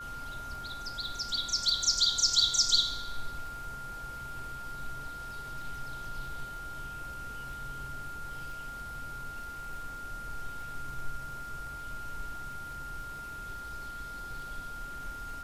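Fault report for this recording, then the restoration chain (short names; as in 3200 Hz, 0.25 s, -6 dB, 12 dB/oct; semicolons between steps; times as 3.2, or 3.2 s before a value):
crackle 38/s -43 dBFS
tone 1400 Hz -40 dBFS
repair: de-click; notch 1400 Hz, Q 30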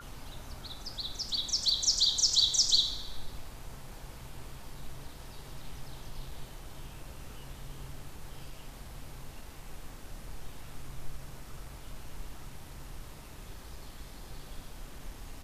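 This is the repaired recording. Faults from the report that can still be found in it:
none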